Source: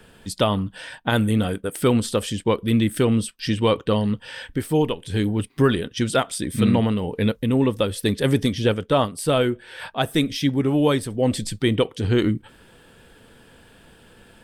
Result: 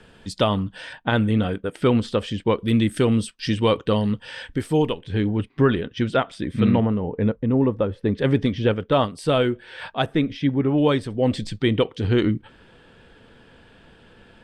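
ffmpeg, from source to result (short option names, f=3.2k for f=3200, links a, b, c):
-af "asetnsamples=n=441:p=0,asendcmd='0.93 lowpass f 3600;2.59 lowpass f 7400;4.99 lowpass f 2800;6.8 lowpass f 1300;8.15 lowpass f 2800;8.92 lowpass f 5300;10.06 lowpass f 2200;10.78 lowpass f 4400',lowpass=6.4k"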